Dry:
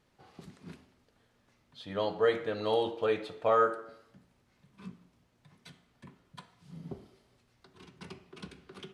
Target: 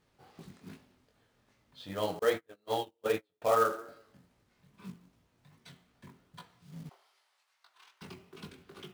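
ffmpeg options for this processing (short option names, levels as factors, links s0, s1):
-filter_complex "[0:a]flanger=delay=18:depth=5.9:speed=2.5,asettb=1/sr,asplit=3[s0][s1][s2];[s0]atrim=end=2.194[s3];[s1]atrim=start=2.19:end=3.42,asetpts=PTS-STARTPTS,afade=t=in:d=0.004:c=qsin,afade=t=out:st=1.226:d=0.004:c=qsin,agate=range=0.0141:threshold=0.0251:ratio=16:detection=peak[s4];[s2]atrim=start=3.416[s5];[s3][s4]acrossfade=d=0.004:c1=hsin:c2=qsin[s6];[s6][s5]acrossfade=d=0.004:c1=qsin:c2=hsin,asettb=1/sr,asplit=3[s7][s8][s9];[s7]atrim=end=6.894[s10];[s8]atrim=start=6.89:end=8.02,asetpts=PTS-STARTPTS,afade=t=in:d=0.004:c=qsin,afade=t=out:st=1.126:d=0.004:c=qsin,highpass=f=810:w=0.5412,highpass=f=810:w=1.3066[s11];[s9]atrim=start=8.016[s12];[s10][s11]acrossfade=d=0.004:c1=hsin:c2=qsin[s13];[s13][s12]acrossfade=d=0.004:c1=qsin:c2=hsin,acrusher=bits=4:mode=log:mix=0:aa=0.000001,volume=1.26"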